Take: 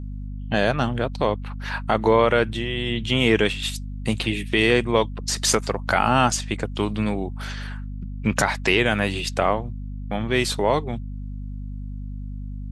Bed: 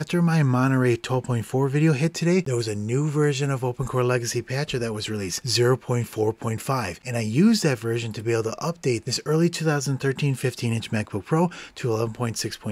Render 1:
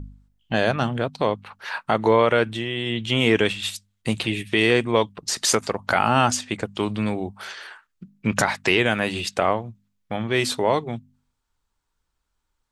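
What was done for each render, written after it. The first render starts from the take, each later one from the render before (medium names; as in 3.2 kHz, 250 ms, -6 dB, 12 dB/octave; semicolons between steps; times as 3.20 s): de-hum 50 Hz, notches 5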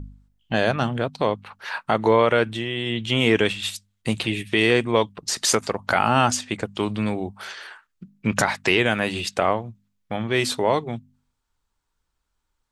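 no audible change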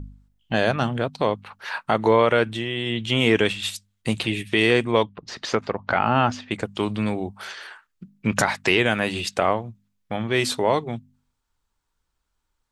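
5.03–6.51 s: distance through air 240 m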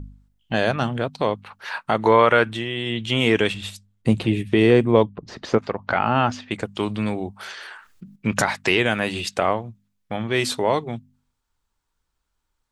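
1.98–2.64 s: dynamic bell 1.3 kHz, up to +6 dB, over -33 dBFS, Q 0.92; 3.54–5.58 s: tilt shelf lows +7 dB; 7.53–8.16 s: level flattener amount 50%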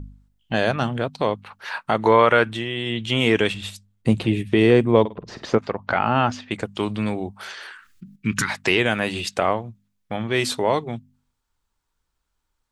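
5.00–5.50 s: flutter echo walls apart 8.7 m, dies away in 0.27 s; 7.71–8.50 s: Butterworth band-stop 660 Hz, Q 0.7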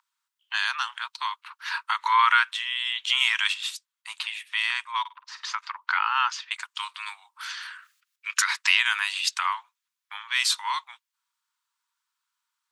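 Chebyshev high-pass 950 Hz, order 6; dynamic bell 5.4 kHz, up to +5 dB, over -42 dBFS, Q 0.79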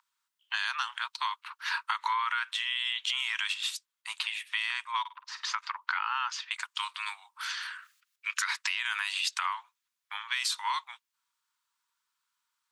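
peak limiter -14 dBFS, peak gain reduction 8.5 dB; compression 5:1, threshold -27 dBFS, peak gain reduction 8 dB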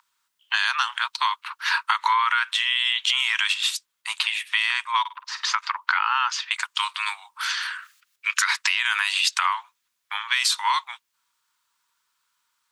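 trim +9 dB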